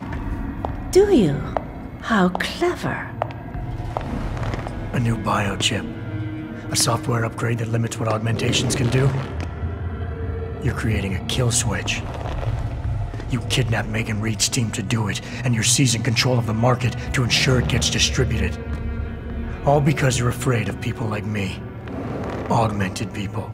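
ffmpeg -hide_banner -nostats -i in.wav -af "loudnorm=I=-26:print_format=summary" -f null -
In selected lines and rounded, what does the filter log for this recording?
Input Integrated:    -22.3 LUFS
Input True Peak:      -3.8 dBTP
Input LRA:             5.5 LU
Input Threshold:     -32.3 LUFS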